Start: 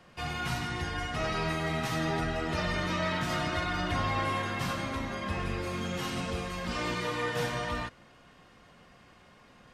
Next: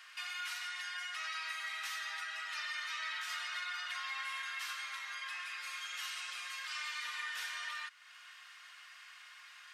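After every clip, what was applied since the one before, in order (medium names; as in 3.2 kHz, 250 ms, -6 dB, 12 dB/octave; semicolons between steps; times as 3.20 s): high-pass 1.4 kHz 24 dB/octave; compression 2:1, threshold -56 dBFS, peak gain reduction 12.5 dB; trim +8 dB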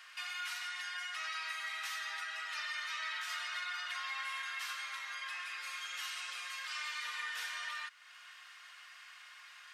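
bass shelf 390 Hz +8.5 dB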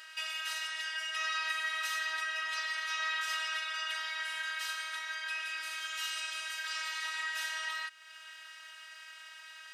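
comb of notches 1.1 kHz; robot voice 318 Hz; trim +8 dB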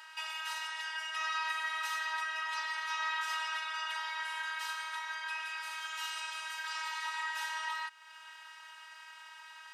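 resonant high-pass 880 Hz, resonance Q 7.9; trim -4 dB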